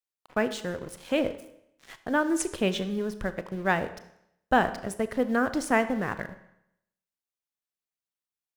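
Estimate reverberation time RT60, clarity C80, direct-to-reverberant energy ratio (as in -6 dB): 0.75 s, 15.5 dB, 11.5 dB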